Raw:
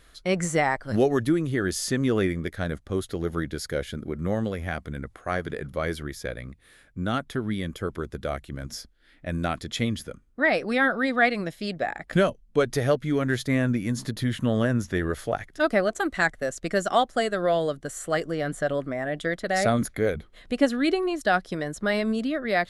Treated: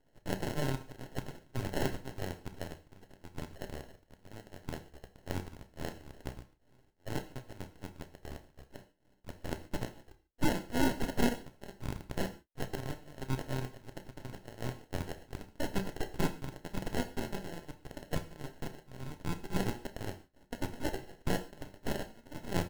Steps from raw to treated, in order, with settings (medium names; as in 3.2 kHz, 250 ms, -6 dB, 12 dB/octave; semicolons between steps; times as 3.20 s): local Wiener filter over 15 samples; high-pass 1.4 kHz 24 dB/octave; treble shelf 4.9 kHz +7.5 dB; in parallel at -2.5 dB: peak limiter -22 dBFS, peak gain reduction 12 dB; on the sum: sample-and-hold 37×; full-wave rectifier; doubling 31 ms -14 dB; gated-style reverb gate 170 ms falling, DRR 8.5 dB; trim -4 dB